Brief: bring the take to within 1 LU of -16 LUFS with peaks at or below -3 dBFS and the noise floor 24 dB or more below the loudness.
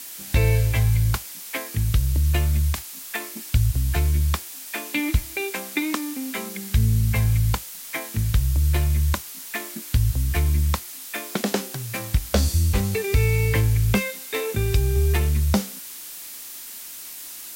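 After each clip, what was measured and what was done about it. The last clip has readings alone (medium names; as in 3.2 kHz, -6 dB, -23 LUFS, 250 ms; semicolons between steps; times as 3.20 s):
noise floor -38 dBFS; noise floor target -48 dBFS; loudness -23.5 LUFS; peak level -8.5 dBFS; loudness target -16.0 LUFS
-> noise print and reduce 10 dB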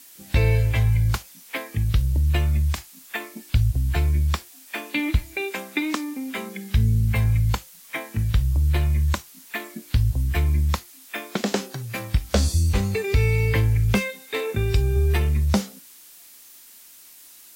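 noise floor -48 dBFS; loudness -24.0 LUFS; peak level -8.5 dBFS; loudness target -16.0 LUFS
-> trim +8 dB; peak limiter -3 dBFS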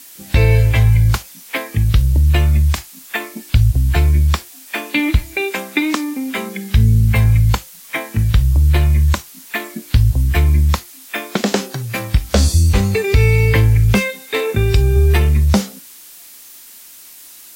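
loudness -16.0 LUFS; peak level -3.0 dBFS; noise floor -40 dBFS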